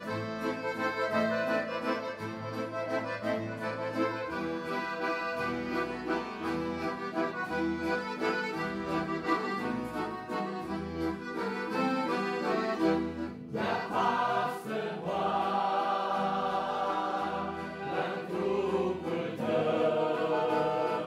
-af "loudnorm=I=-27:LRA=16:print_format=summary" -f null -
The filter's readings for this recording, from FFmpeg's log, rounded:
Input Integrated:    -31.8 LUFS
Input True Peak:     -15.9 dBTP
Input LRA:             3.0 LU
Input Threshold:     -41.8 LUFS